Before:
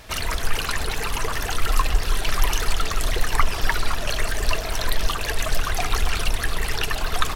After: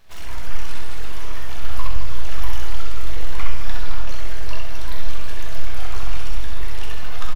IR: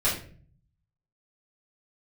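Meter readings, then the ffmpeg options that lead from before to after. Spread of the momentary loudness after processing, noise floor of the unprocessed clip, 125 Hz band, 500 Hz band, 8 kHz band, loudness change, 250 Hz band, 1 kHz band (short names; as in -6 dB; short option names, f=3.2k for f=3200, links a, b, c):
4 LU, -28 dBFS, +0.5 dB, -9.0 dB, -12.5 dB, -8.5 dB, -6.0 dB, -9.5 dB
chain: -filter_complex "[0:a]equalizer=f=8.3k:t=o:w=0.54:g=-10,aeval=exprs='abs(val(0))':c=same,aecho=1:1:64.14|215.7:0.562|0.355,asplit=2[a][b];[1:a]atrim=start_sample=2205,asetrate=26019,aresample=44100,adelay=13[c];[b][c]afir=irnorm=-1:irlink=0,volume=-16dB[d];[a][d]amix=inputs=2:normalize=0,volume=-12dB"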